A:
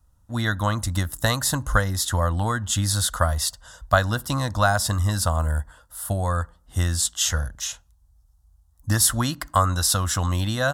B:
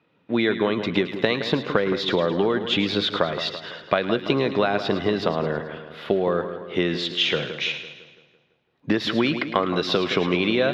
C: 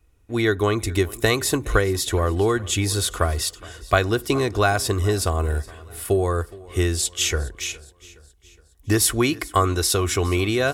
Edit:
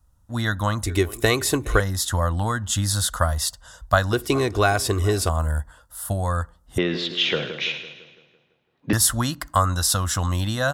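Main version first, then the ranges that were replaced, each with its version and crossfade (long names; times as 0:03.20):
A
0:00.86–0:01.80: punch in from C
0:04.13–0:05.29: punch in from C
0:06.78–0:08.93: punch in from B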